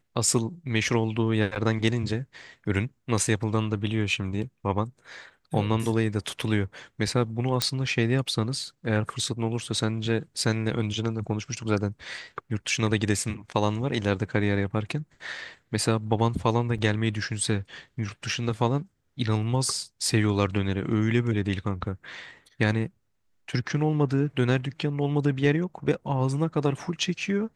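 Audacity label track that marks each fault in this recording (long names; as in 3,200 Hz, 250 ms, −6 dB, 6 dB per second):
1.550000	1.560000	drop-out 8 ms
7.620000	7.620000	click −7 dBFS
16.780000	16.790000	drop-out 5.6 ms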